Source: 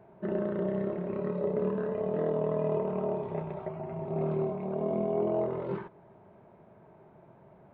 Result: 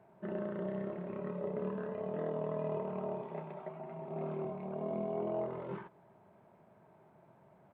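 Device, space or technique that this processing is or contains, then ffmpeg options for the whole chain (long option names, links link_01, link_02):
Bluetooth headset: -filter_complex "[0:a]equalizer=frequency=400:width=1.3:gain=-4.5,asettb=1/sr,asplit=3[link_01][link_02][link_03];[link_01]atrim=end=3.214[link_04];[link_02]atrim=start=3.21:end=4.45,asetpts=PTS-STARTPTS,afade=type=in:duration=0.004:curve=qsin,afade=type=out:start_time=1.236:duration=0.004:curve=qsin,highpass=frequency=160:width=0.5412,highpass=frequency=160:width=1.3066[link_05];[link_03]atrim=start=4.446[link_06];[link_04][link_05]acrossfade=duration=0.004:curve1=hsin:curve2=qsin[link_07];[link_07][link_06]acrossfade=duration=0.004:curve1=qsin:curve2=hsin,highpass=frequency=140:poles=1,aresample=8000,aresample=44100,volume=-4dB" -ar 32000 -c:a sbc -b:a 64k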